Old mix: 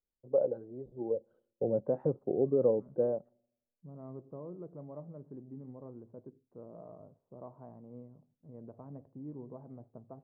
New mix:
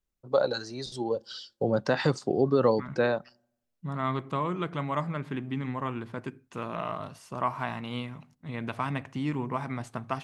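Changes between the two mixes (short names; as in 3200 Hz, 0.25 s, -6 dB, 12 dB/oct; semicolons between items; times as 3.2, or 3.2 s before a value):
second voice +6.5 dB; master: remove ladder low-pass 630 Hz, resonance 45%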